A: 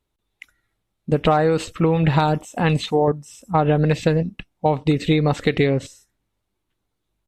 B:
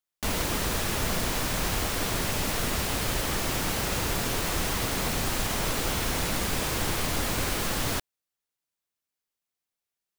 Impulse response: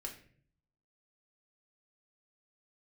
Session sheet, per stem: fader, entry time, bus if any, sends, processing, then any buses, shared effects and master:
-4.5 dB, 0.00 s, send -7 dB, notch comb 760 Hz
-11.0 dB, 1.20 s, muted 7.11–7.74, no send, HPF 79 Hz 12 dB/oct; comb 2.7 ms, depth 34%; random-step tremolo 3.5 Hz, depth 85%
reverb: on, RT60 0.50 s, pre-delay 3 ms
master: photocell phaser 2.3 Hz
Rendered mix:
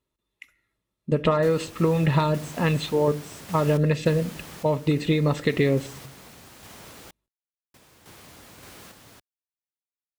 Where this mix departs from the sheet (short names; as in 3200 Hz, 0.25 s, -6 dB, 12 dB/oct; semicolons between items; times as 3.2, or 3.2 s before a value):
stem B: missing comb 2.7 ms, depth 34%; master: missing photocell phaser 2.3 Hz